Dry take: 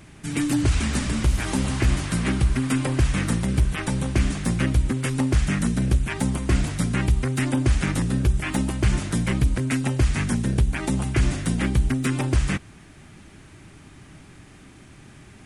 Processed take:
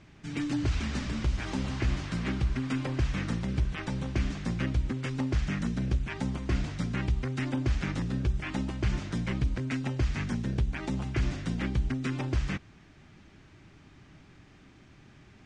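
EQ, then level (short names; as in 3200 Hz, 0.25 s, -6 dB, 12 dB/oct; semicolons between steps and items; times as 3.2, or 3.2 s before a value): LPF 6100 Hz 24 dB/oct; -8.0 dB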